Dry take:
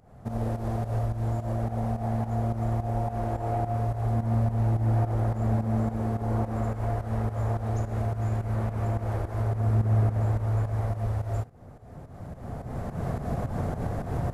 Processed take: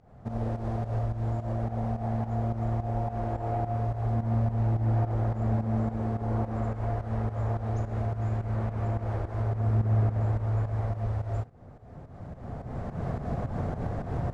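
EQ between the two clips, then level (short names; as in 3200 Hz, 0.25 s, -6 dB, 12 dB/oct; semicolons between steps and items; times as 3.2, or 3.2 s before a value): air absorption 82 m; -1.5 dB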